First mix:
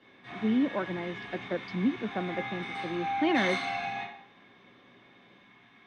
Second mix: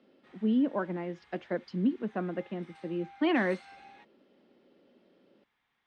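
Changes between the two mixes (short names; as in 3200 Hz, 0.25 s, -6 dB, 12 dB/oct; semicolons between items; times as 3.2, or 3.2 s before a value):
background -10.5 dB; reverb: off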